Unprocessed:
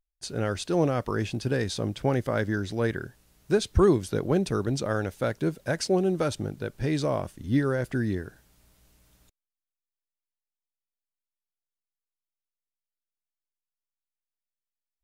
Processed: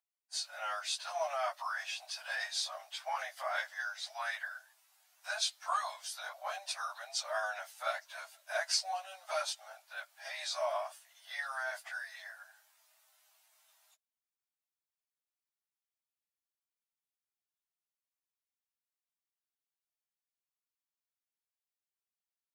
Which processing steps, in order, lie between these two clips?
dynamic equaliser 4,700 Hz, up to +4 dB, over −53 dBFS, Q 1.9
time stretch by phase vocoder 1.5×
Butterworth high-pass 630 Hz 96 dB per octave

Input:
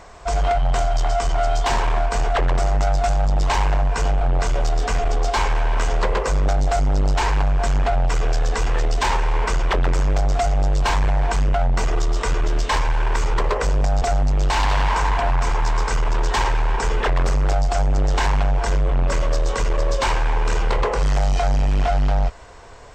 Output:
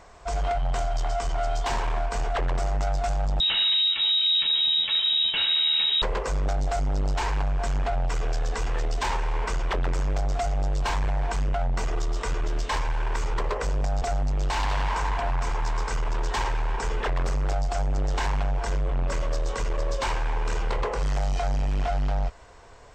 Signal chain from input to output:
0:03.40–0:06.02: voice inversion scrambler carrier 3,800 Hz
level −7 dB

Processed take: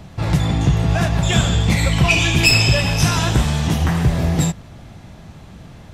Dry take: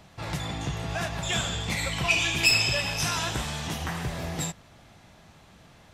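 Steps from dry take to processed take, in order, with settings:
low-shelf EQ 390 Hz +11.5 dB
level +6.5 dB

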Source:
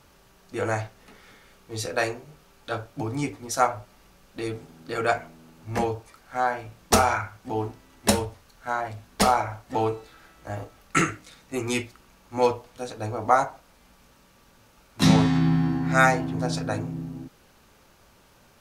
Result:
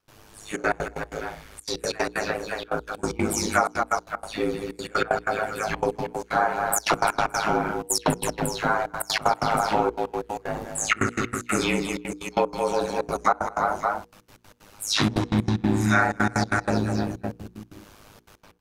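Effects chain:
every frequency bin delayed by itself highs early, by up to 197 ms
on a send: multi-tap delay 61/212/341/565 ms −9.5/−8.5/−10/−11.5 dB
on the sum: gate pattern ".xxxxxx.x.x.x" 188 BPM −24 dB
downward compressor 6 to 1, threshold −24 dBFS, peak gain reduction 11 dB
dynamic equaliser 1,400 Hz, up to +4 dB, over −46 dBFS, Q 4.6
ring modulation 52 Hz
mains-hum notches 60/120/180/240/300/360/420/480 Hz
level +8.5 dB

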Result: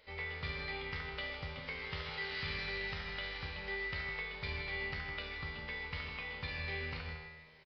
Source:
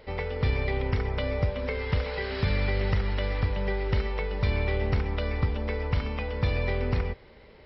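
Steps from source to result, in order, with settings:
tilt shelving filter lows −8.5 dB, about 1,200 Hz
tuned comb filter 79 Hz, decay 1.2 s, harmonics all, mix 90%
slap from a distant wall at 27 metres, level −9 dB
on a send at −22.5 dB: convolution reverb RT60 2.3 s, pre-delay 85 ms
on the sum: downsampling to 11,025 Hz
level +4 dB

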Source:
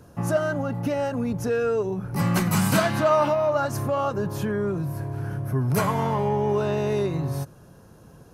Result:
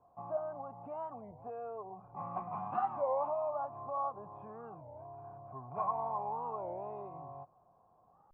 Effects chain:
formant resonators in series a
wow of a warped record 33 1/3 rpm, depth 250 cents

